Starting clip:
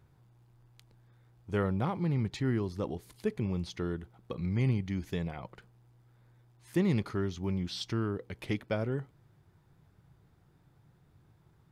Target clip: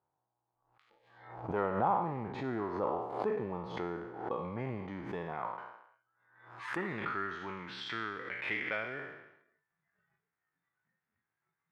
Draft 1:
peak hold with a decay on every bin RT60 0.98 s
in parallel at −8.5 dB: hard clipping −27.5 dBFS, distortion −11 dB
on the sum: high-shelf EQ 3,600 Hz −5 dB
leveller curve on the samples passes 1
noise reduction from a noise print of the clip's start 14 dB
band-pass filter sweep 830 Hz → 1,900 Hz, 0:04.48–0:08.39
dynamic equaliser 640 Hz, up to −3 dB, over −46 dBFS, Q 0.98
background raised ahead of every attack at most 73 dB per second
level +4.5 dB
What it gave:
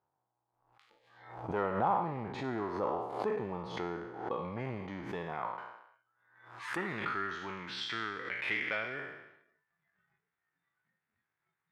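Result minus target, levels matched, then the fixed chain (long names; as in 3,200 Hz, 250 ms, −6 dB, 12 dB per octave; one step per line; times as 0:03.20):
hard clipping: distortion +19 dB; 4,000 Hz band +4.0 dB
peak hold with a decay on every bin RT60 0.98 s
in parallel at −8.5 dB: hard clipping −19 dBFS, distortion −30 dB
on the sum: high-shelf EQ 3,600 Hz −15.5 dB
leveller curve on the samples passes 1
noise reduction from a noise print of the clip's start 14 dB
band-pass filter sweep 830 Hz → 1,900 Hz, 0:04.48–0:08.39
dynamic equaliser 640 Hz, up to −3 dB, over −46 dBFS, Q 0.98
background raised ahead of every attack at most 73 dB per second
level +4.5 dB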